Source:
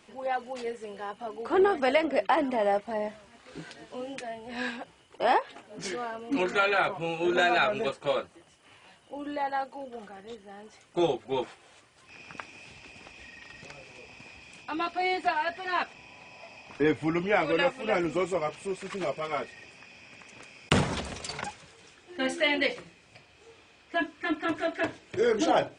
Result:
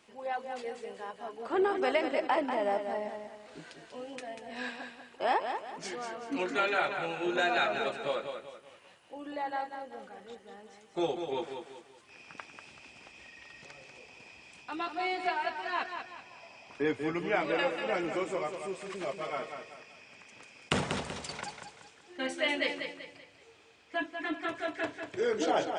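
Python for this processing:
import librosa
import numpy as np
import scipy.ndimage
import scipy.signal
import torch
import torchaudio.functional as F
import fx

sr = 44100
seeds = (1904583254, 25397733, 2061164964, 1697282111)

p1 = fx.low_shelf(x, sr, hz=150.0, db=-8.0)
p2 = p1 + fx.echo_feedback(p1, sr, ms=191, feedback_pct=38, wet_db=-7.0, dry=0)
y = p2 * 10.0 ** (-4.5 / 20.0)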